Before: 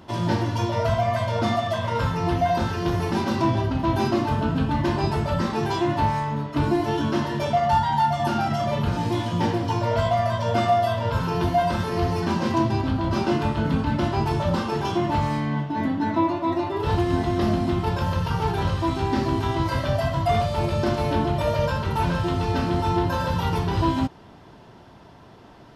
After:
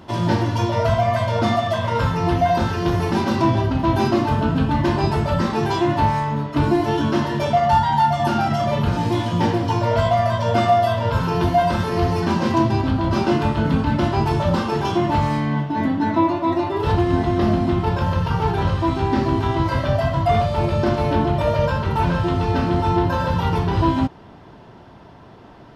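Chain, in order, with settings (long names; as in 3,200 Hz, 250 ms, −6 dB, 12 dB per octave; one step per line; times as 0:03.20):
high-shelf EQ 4,800 Hz −2.5 dB, from 0:16.92 −9.5 dB
level +4 dB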